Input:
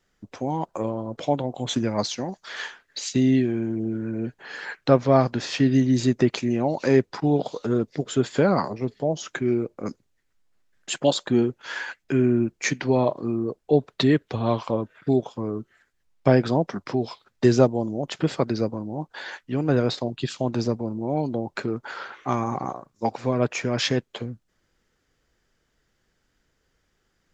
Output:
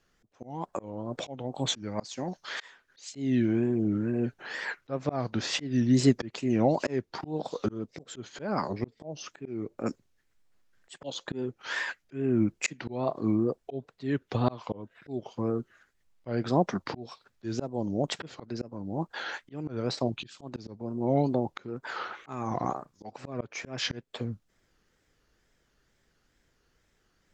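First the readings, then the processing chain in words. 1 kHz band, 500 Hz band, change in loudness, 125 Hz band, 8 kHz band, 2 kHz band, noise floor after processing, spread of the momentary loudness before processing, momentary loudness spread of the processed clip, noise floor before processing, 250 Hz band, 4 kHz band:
−6.5 dB, −9.0 dB, −7.0 dB, −7.5 dB, can't be measured, −5.0 dB, −72 dBFS, 12 LU, 15 LU, −72 dBFS, −6.5 dB, −5.0 dB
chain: volume swells 405 ms
tape wow and flutter 140 cents

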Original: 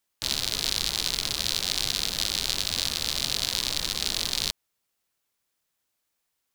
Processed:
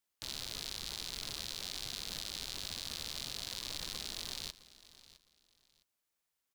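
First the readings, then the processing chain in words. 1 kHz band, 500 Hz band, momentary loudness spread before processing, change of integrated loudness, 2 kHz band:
−12.5 dB, −12.5 dB, 2 LU, −14.0 dB, −13.5 dB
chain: brickwall limiter −16 dBFS, peak gain reduction 11 dB
on a send: repeating echo 660 ms, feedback 24%, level −18 dB
on the sum: level −7 dB

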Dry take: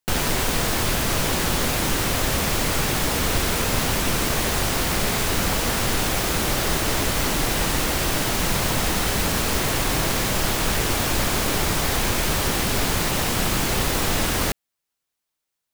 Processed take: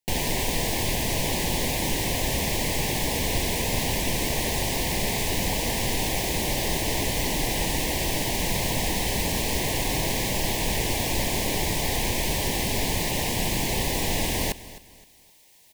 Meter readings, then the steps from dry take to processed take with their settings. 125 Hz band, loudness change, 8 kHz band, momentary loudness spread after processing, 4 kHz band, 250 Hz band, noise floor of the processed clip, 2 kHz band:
−3.5 dB, −3.5 dB, −3.5 dB, 0 LU, −3.0 dB, −3.5 dB, −51 dBFS, −4.5 dB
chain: Chebyshev band-stop filter 940–1,900 Hz, order 2
reversed playback
upward compression, threshold −30 dBFS
reversed playback
repeating echo 260 ms, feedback 32%, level −17 dB
level −2.5 dB

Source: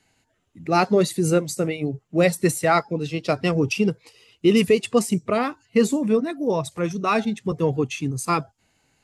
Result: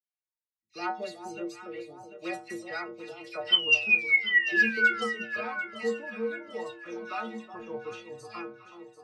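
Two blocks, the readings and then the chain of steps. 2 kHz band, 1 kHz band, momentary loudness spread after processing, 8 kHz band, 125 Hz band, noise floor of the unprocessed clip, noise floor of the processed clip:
+5.5 dB, −12.0 dB, 20 LU, below −15 dB, below −25 dB, −70 dBFS, below −85 dBFS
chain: pitch vibrato 4.1 Hz 23 cents
sound drawn into the spectrogram fall, 0:03.49–0:05.01, 1,300–3,100 Hz −14 dBFS
noise gate −34 dBFS, range −28 dB
three-way crossover with the lows and the highs turned down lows −12 dB, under 450 Hz, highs −22 dB, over 5,500 Hz
stiff-string resonator 110 Hz, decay 0.43 s, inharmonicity 0.008
delay that swaps between a low-pass and a high-pass 371 ms, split 1,000 Hz, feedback 68%, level −8.5 dB
dynamic equaliser 5,000 Hz, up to +8 dB, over −46 dBFS, Q 1.3
all-pass dispersion lows, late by 72 ms, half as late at 2,200 Hz

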